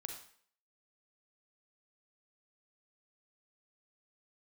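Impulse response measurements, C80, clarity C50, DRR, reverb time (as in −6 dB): 8.5 dB, 5.0 dB, 3.0 dB, 0.55 s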